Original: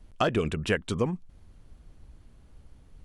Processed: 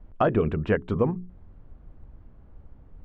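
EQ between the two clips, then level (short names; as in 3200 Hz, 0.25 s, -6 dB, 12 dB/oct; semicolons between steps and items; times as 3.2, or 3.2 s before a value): LPF 1300 Hz 12 dB/oct; notches 60/120/180/240/300/360/420 Hz; +4.5 dB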